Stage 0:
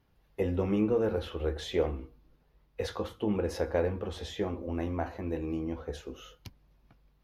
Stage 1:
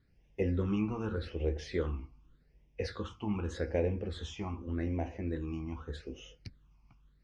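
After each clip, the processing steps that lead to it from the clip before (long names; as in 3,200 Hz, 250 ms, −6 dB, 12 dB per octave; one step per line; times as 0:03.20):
low-pass filter 7,500 Hz 24 dB per octave
all-pass phaser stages 8, 0.84 Hz, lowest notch 490–1,300 Hz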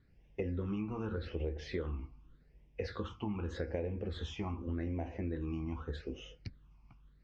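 downward compressor 6 to 1, threshold −36 dBFS, peak gain reduction 10 dB
high-frequency loss of the air 110 metres
level +2.5 dB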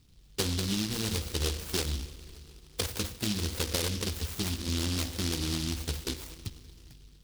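convolution reverb RT60 3.5 s, pre-delay 68 ms, DRR 14.5 dB
short delay modulated by noise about 4,000 Hz, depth 0.39 ms
level +6 dB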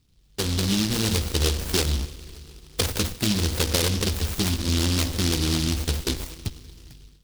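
automatic gain control gain up to 10 dB
in parallel at −8 dB: comparator with hysteresis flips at −25 dBFS
on the sum: level −3.5 dB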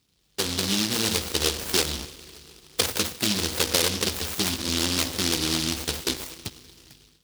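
high-pass filter 380 Hz 6 dB per octave
level +2 dB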